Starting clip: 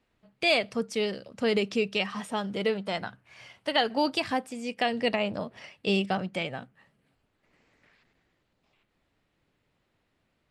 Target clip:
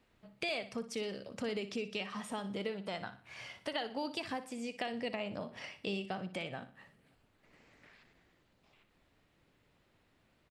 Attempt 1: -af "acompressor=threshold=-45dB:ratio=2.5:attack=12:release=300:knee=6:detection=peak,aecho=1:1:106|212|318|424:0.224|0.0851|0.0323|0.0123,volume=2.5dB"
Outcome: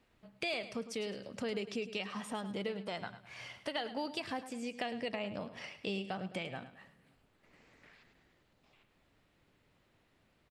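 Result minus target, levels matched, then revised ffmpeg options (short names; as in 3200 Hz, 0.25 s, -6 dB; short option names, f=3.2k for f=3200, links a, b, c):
echo 46 ms late
-af "acompressor=threshold=-45dB:ratio=2.5:attack=12:release=300:knee=6:detection=peak,aecho=1:1:60|120|180|240:0.224|0.0851|0.0323|0.0123,volume=2.5dB"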